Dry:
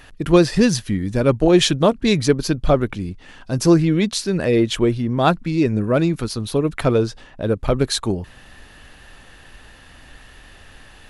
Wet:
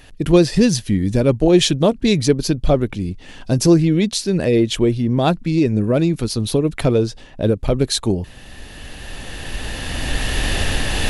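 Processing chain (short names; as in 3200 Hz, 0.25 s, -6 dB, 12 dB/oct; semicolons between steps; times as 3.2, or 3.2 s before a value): recorder AGC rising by 10 dB/s; bell 1300 Hz -8 dB 1.2 oct; gain +1.5 dB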